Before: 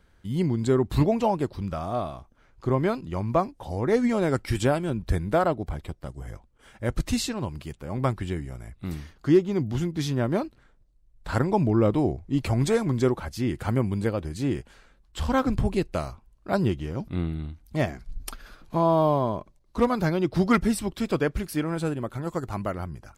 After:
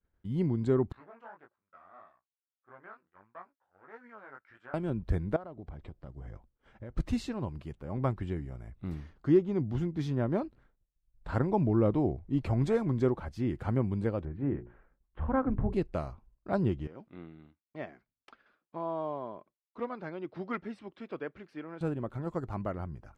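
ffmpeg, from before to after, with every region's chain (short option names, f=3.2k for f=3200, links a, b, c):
-filter_complex "[0:a]asettb=1/sr,asplit=3[a][b][c];[a]atrim=end=0.924[d];[b]atrim=start=0.92:end=4.74,asetpts=PTS-STARTPTS,afade=t=in:d=0.004:c=qsin,afade=t=out:st=3.816:d=0.004:c=qsin,aeval=exprs='if(lt(val(0),0),0.447*val(0),val(0))':c=same,bandpass=f=1.5k:t=q:w=3.6,flanger=delay=16.5:depth=5.5:speed=1.6[e];[c]atrim=start=4.736[f];[d][e]acrossfade=d=0.004:c1=hsin:c2=qsin[g];[g][f]acrossfade=d=0.004:c1=qsin:c2=hsin,asettb=1/sr,asplit=3[h][i][j];[h]atrim=end=5.364[k];[i]atrim=start=5.36:end=6.97,asetpts=PTS-STARTPTS,afade=t=in:d=0.004:c=qsin,afade=t=out:st=1.606:d=0.004:c=qsin,lowpass=6.2k,acompressor=threshold=-34dB:ratio=10:attack=3.2:release=140:knee=1:detection=peak[l];[j]atrim=start=6.966[m];[k][l]acrossfade=d=0.004:c1=hsin:c2=qsin[n];[n][m]acrossfade=d=0.004:c1=qsin:c2=hsin,asettb=1/sr,asplit=3[o][p][q];[o]atrim=end=14.254[r];[p]atrim=start=14.25:end=15.73,asetpts=PTS-STARTPTS,afade=t=in:d=0.004:c=qsin,afade=t=out:st=1.476:d=0.004:c=qsin,lowpass=f=2k:w=0.5412,lowpass=f=2k:w=1.3066,bandreject=f=60:t=h:w=6,bandreject=f=120:t=h:w=6,bandreject=f=180:t=h:w=6,bandreject=f=240:t=h:w=6,bandreject=f=300:t=h:w=6,bandreject=f=360:t=h:w=6,bandreject=f=420:t=h:w=6[s];[q]atrim=start=15.726[t];[r][s]acrossfade=d=0.004:c1=hsin:c2=qsin[u];[u][t]acrossfade=d=0.004:c1=qsin:c2=hsin,asettb=1/sr,asplit=3[v][w][x];[v]atrim=end=16.874[y];[w]atrim=start=16.87:end=21.81,asetpts=PTS-STARTPTS,afade=t=in:d=0.004:c=qsin,afade=t=out:st=4.936:d=0.004:c=qsin,highpass=490,lowpass=2.2k,equalizer=f=790:w=0.38:g=-14,acontrast=74[z];[x]atrim=start=21.806[aa];[y][z]acrossfade=d=0.004:c1=hsin:c2=qsin[ab];[ab][aa]acrossfade=d=0.004:c1=qsin:c2=hsin,agate=range=-33dB:threshold=-50dB:ratio=3:detection=peak,lowpass=f=1.3k:p=1,volume=-4.5dB"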